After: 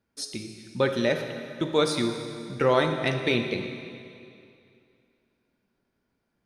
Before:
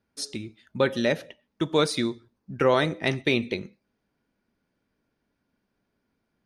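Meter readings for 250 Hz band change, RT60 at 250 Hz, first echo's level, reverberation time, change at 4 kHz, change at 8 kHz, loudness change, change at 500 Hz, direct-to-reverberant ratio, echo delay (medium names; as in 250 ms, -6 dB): -0.5 dB, 2.6 s, no echo, 2.4 s, -0.5 dB, -0.5 dB, -0.5 dB, 0.0 dB, 5.0 dB, no echo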